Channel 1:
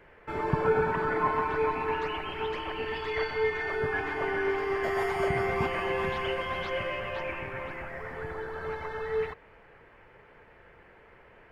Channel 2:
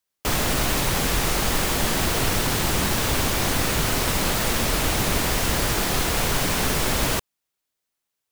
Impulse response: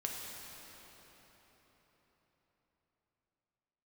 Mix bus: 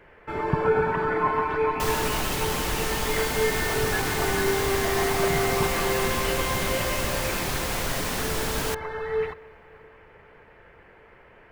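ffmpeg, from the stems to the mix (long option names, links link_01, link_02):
-filter_complex "[0:a]volume=2dB,asplit=2[link_01][link_02];[link_02]volume=-16.5dB[link_03];[1:a]adelay=1550,volume=-6dB[link_04];[2:a]atrim=start_sample=2205[link_05];[link_03][link_05]afir=irnorm=-1:irlink=0[link_06];[link_01][link_04][link_06]amix=inputs=3:normalize=0"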